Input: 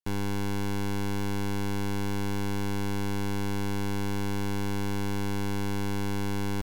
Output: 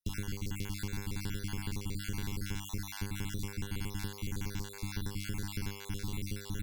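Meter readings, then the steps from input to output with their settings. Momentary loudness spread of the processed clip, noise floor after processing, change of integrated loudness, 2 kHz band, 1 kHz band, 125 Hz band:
2 LU, -47 dBFS, -8.0 dB, -7.5 dB, -14.5 dB, -6.5 dB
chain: random holes in the spectrogram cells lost 46%; hum notches 50/100/150/200/250/300 Hz; in parallel at -6 dB: hard clipper -35.5 dBFS, distortion -10 dB; on the sum: compression 2.5:1, threshold -31 dBFS, peak gain reduction 3.5 dB; Chebyshev shaper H 6 -33 dB, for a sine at -24 dBFS; amplifier tone stack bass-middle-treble 6-0-2; trim +15.5 dB

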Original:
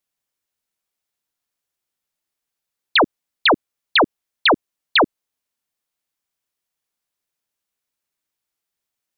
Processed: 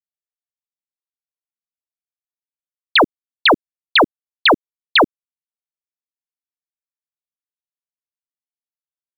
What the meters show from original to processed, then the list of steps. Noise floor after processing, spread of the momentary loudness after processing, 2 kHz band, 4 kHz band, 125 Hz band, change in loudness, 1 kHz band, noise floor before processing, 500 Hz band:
under -85 dBFS, 5 LU, +2.5 dB, +2.5 dB, +2.5 dB, +2.5 dB, +2.5 dB, -83 dBFS, +2.5 dB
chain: bit crusher 8-bit; trim +2.5 dB

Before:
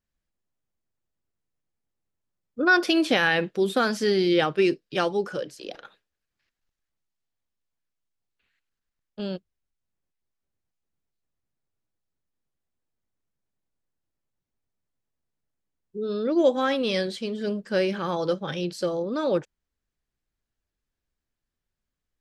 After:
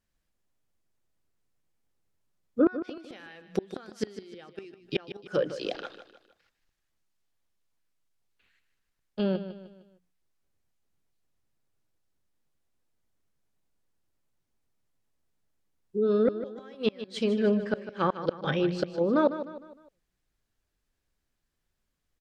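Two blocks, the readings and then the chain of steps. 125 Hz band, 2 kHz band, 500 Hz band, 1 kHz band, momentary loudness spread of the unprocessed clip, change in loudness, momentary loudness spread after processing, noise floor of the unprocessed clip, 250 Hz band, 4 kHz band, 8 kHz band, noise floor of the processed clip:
-1.5 dB, -14.5 dB, -4.0 dB, -7.0 dB, 13 LU, -5.0 dB, 19 LU, under -85 dBFS, -3.0 dB, -10.5 dB, under -10 dB, -80 dBFS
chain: hum notches 60/120/180/240 Hz; inverted gate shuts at -17 dBFS, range -31 dB; low-pass that closes with the level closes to 2.1 kHz, closed at -28 dBFS; feedback delay 153 ms, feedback 42%, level -12 dB; trim +4.5 dB

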